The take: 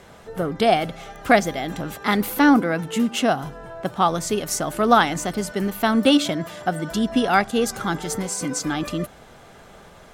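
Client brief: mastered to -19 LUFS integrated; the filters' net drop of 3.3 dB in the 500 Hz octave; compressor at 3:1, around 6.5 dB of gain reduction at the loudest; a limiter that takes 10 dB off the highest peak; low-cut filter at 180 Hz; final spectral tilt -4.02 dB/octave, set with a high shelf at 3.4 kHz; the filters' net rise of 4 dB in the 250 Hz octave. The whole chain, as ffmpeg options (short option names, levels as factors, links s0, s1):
-af "highpass=180,equalizer=f=250:t=o:g=7.5,equalizer=f=500:t=o:g=-6.5,highshelf=f=3400:g=5,acompressor=threshold=0.141:ratio=3,volume=2.24,alimiter=limit=0.355:level=0:latency=1"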